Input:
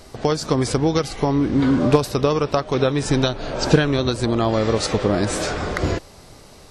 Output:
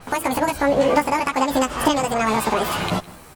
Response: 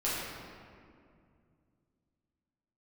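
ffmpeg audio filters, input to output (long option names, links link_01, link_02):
-filter_complex "[0:a]asplit=2[link_01][link_02];[link_02]alimiter=limit=-12.5dB:level=0:latency=1:release=469,volume=0dB[link_03];[link_01][link_03]amix=inputs=2:normalize=0,flanger=delay=22.5:depth=6.3:speed=0.34,asplit=2[link_04][link_05];[link_05]aecho=0:1:316:0.0841[link_06];[link_04][link_06]amix=inputs=2:normalize=0,asetrate=88200,aresample=44100,adynamicequalizer=threshold=0.0141:dfrequency=7300:dqfactor=0.7:tfrequency=7300:tqfactor=0.7:attack=5:release=100:ratio=0.375:range=2:mode=cutabove:tftype=highshelf,volume=-2dB"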